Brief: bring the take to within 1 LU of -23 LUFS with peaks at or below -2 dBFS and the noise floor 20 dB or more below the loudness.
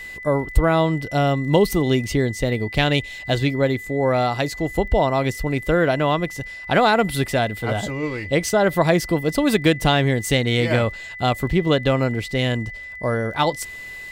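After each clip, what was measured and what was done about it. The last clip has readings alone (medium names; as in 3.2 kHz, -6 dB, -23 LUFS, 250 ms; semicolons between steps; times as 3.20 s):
tick rate 21 per s; steady tone 2 kHz; tone level -33 dBFS; loudness -20.5 LUFS; peak level -3.0 dBFS; loudness target -23.0 LUFS
-> de-click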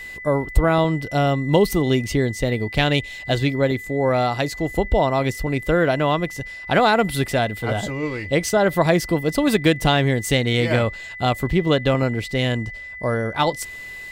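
tick rate 0.21 per s; steady tone 2 kHz; tone level -33 dBFS
-> band-stop 2 kHz, Q 30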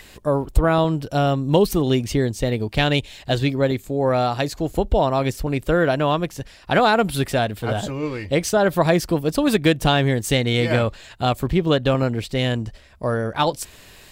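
steady tone not found; loudness -21.0 LUFS; peak level -3.5 dBFS; loudness target -23.0 LUFS
-> trim -2 dB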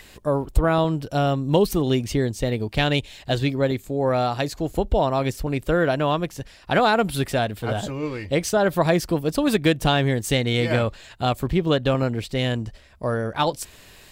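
loudness -23.0 LUFS; peak level -5.5 dBFS; noise floor -49 dBFS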